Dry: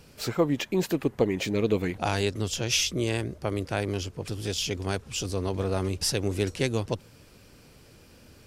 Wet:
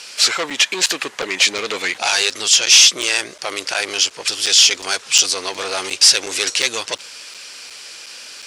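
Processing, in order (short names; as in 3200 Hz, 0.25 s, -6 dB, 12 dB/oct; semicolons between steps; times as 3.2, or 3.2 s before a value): overdrive pedal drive 23 dB, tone 5700 Hz, clips at -9 dBFS; weighting filter ITU-R 468; crackling interface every 0.36 s, samples 256, zero, from 0.5; gain -1 dB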